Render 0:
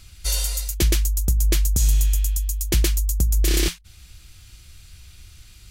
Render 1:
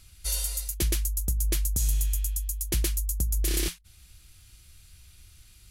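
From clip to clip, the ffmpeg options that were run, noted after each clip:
-af "equalizer=f=11000:t=o:w=0.56:g=8,volume=0.398"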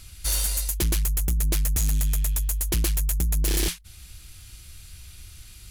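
-af "asoftclip=type=tanh:threshold=0.0398,volume=2.66"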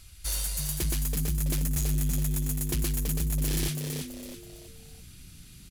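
-filter_complex "[0:a]asplit=5[s0][s1][s2][s3][s4];[s1]adelay=329,afreqshift=100,volume=0.531[s5];[s2]adelay=658,afreqshift=200,volume=0.197[s6];[s3]adelay=987,afreqshift=300,volume=0.0724[s7];[s4]adelay=1316,afreqshift=400,volume=0.0269[s8];[s0][s5][s6][s7][s8]amix=inputs=5:normalize=0,volume=0.501"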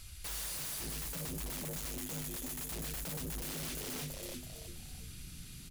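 -af "bandreject=f=50:t=h:w=6,bandreject=f=100:t=h:w=6,bandreject=f=150:t=h:w=6,bandreject=f=200:t=h:w=6,bandreject=f=250:t=h:w=6,bandreject=f=300:t=h:w=6,bandreject=f=350:t=h:w=6,bandreject=f=400:t=h:w=6,bandreject=f=450:t=h:w=6,alimiter=level_in=1.19:limit=0.0631:level=0:latency=1:release=20,volume=0.841,aeval=exprs='0.015*(abs(mod(val(0)/0.015+3,4)-2)-1)':c=same,volume=1.12"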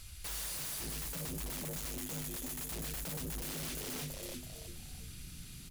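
-af "acrusher=bits=10:mix=0:aa=0.000001"

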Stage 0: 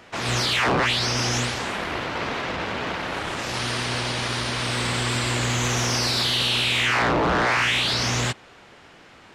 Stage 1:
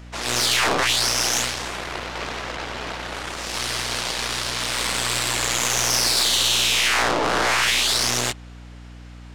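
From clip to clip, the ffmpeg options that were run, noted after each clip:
-af "aeval=exprs='0.237*(cos(1*acos(clip(val(0)/0.237,-1,1)))-cos(1*PI/2))+0.0596*(cos(4*acos(clip(val(0)/0.237,-1,1)))-cos(4*PI/2))+0.00944*(cos(7*acos(clip(val(0)/0.237,-1,1)))-cos(7*PI/2))':c=same,bass=f=250:g=-10,treble=f=4000:g=6,aeval=exprs='val(0)+0.0112*(sin(2*PI*60*n/s)+sin(2*PI*2*60*n/s)/2+sin(2*PI*3*60*n/s)/3+sin(2*PI*4*60*n/s)/4+sin(2*PI*5*60*n/s)/5)':c=same"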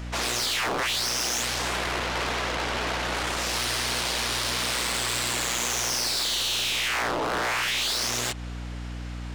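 -af "acompressor=threshold=0.0708:ratio=6,asoftclip=type=tanh:threshold=0.0355,volume=2"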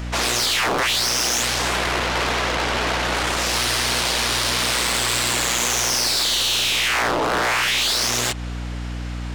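-af "volume=2.11" -ar 48000 -c:a aac -b:a 192k

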